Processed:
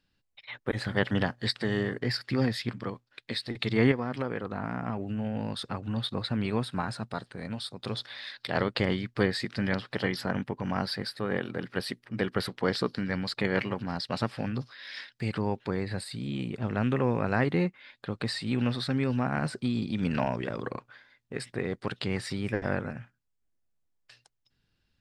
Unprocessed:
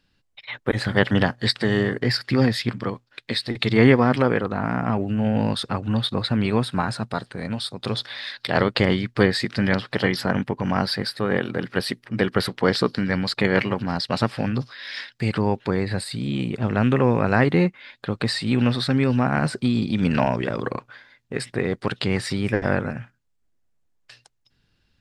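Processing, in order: 3.91–5.97 s: compression, threshold -19 dBFS, peak gain reduction 8 dB; trim -8 dB

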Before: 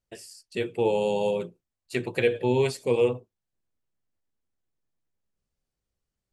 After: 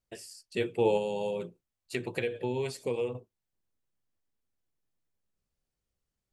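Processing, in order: 0.97–3.15 s: compression 4:1, threshold -28 dBFS, peak gain reduction 9.5 dB; trim -1.5 dB

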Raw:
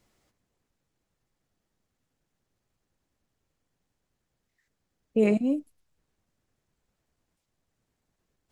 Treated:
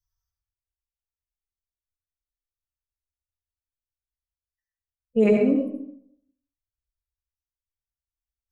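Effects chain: expander on every frequency bin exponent 2; low-pass 3.7 kHz 6 dB/octave; reverberation RT60 0.70 s, pre-delay 67 ms, DRR 1 dB; trim +4.5 dB

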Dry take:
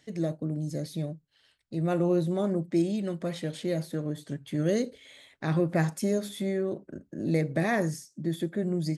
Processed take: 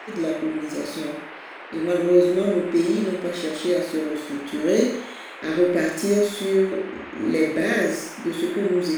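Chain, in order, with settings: median filter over 3 samples; static phaser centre 360 Hz, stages 4; Schroeder reverb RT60 0.65 s, combs from 28 ms, DRR -1.5 dB; band noise 300–2400 Hz -46 dBFS; trim +6.5 dB

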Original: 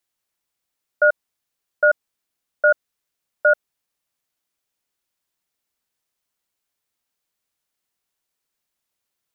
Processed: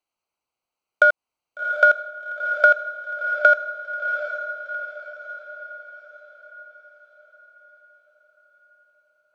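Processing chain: local Wiener filter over 25 samples; tilt shelf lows -10 dB, about 690 Hz; compression, threshold -17 dBFS, peak gain reduction 9 dB; on a send: echo that smears into a reverb 746 ms, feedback 49%, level -7.5 dB; on the sum: trim +5 dB

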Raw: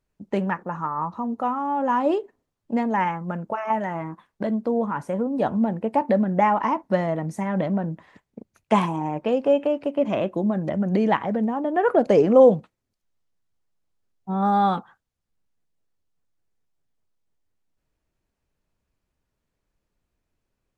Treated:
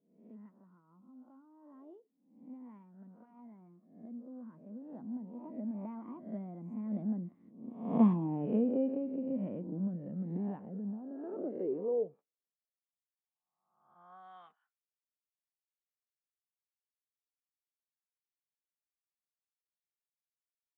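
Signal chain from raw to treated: reverse spectral sustain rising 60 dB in 0.69 s; Doppler pass-by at 8.28 s, 29 m/s, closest 13 m; band-pass sweep 220 Hz -> 2.1 kHz, 10.96–14.61 s

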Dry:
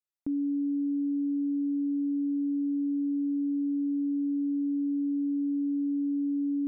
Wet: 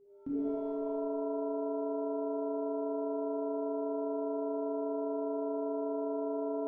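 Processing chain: whistle 400 Hz -54 dBFS; pitch-shifted reverb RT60 1.4 s, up +7 st, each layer -2 dB, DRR -5 dB; trim -8 dB

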